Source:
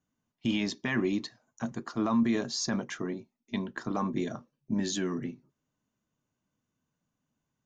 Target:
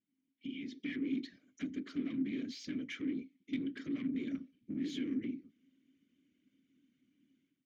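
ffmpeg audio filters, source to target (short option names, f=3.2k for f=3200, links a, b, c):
-filter_complex "[0:a]acompressor=threshold=-39dB:ratio=20,afftfilt=real='hypot(re,im)*cos(2*PI*random(0))':imag='hypot(re,im)*sin(2*PI*random(1))':win_size=512:overlap=0.75,dynaudnorm=f=570:g=3:m=15dB,asoftclip=type=tanh:threshold=-36dB,asplit=3[a][b][c];[a]bandpass=f=270:t=q:w=8,volume=0dB[d];[b]bandpass=f=2.29k:t=q:w=8,volume=-6dB[e];[c]bandpass=f=3.01k:t=q:w=8,volume=-9dB[f];[d][e][f]amix=inputs=3:normalize=0,volume=11dB"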